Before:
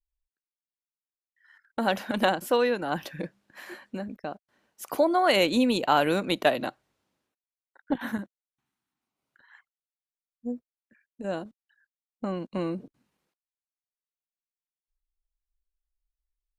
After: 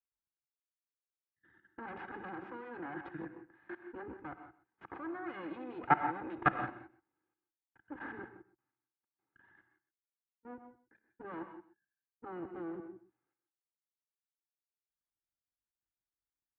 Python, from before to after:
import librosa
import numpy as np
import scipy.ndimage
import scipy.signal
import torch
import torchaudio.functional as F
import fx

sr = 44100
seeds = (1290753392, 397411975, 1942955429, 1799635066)

p1 = fx.lower_of_two(x, sr, delay_ms=2.4)
p2 = fx.level_steps(p1, sr, step_db=22)
p3 = fx.cabinet(p2, sr, low_hz=100.0, low_slope=12, high_hz=2100.0, hz=(120.0, 200.0, 320.0, 450.0, 950.0, 1500.0), db=(4, 9, 10, -5, 5, 7))
p4 = p3 + fx.echo_single(p3, sr, ms=127, db=-16.0, dry=0)
p5 = fx.rev_gated(p4, sr, seeds[0], gate_ms=190, shape='rising', drr_db=9.0)
y = p5 * 10.0 ** (-2.5 / 20.0)